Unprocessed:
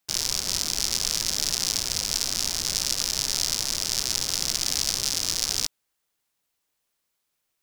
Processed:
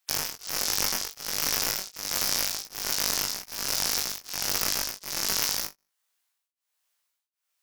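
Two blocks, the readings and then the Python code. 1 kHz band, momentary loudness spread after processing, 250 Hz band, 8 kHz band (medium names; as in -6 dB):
+4.0 dB, 6 LU, -1.5 dB, -4.0 dB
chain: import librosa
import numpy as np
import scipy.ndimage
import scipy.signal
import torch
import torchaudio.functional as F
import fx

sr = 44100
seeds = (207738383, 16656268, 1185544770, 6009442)

y = fx.spec_gate(x, sr, threshold_db=-20, keep='strong')
y = scipy.signal.sosfilt(scipy.signal.butter(2, 780.0, 'highpass', fs=sr, output='sos'), y)
y = fx.rider(y, sr, range_db=10, speed_s=0.5)
y = (np.mod(10.0 ** (9.0 / 20.0) * y + 1.0, 2.0) - 1.0) / 10.0 ** (9.0 / 20.0)
y = fx.room_flutter(y, sr, wall_m=3.5, rt60_s=0.26)
y = y * np.abs(np.cos(np.pi * 1.3 * np.arange(len(y)) / sr))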